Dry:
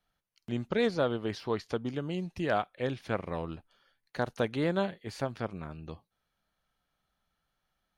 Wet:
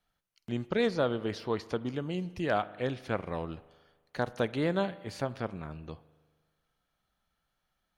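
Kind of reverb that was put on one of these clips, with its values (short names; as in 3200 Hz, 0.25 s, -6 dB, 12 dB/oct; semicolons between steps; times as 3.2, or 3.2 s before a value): spring tank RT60 1.5 s, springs 39 ms, chirp 45 ms, DRR 17 dB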